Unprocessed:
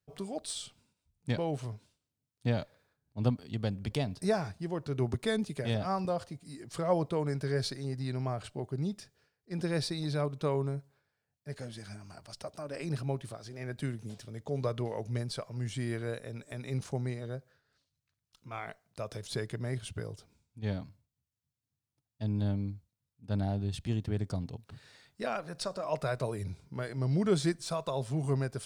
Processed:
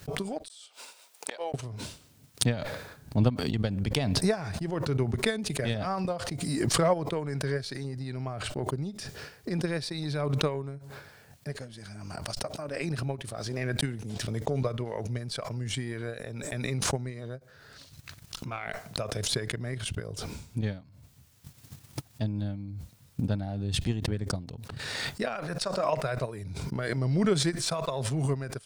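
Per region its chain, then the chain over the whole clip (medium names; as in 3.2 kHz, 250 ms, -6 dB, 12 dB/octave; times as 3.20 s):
0.48–1.54 s: high-pass 510 Hz 24 dB/octave + inverted gate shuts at -37 dBFS, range -32 dB
13.77–14.27 s: gate -48 dBFS, range -9 dB + decay stretcher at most 25 dB/s
whole clip: dynamic bell 2 kHz, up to +4 dB, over -50 dBFS, Q 1.1; transient shaper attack +9 dB, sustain -8 dB; swell ahead of each attack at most 21 dB/s; trim -3.5 dB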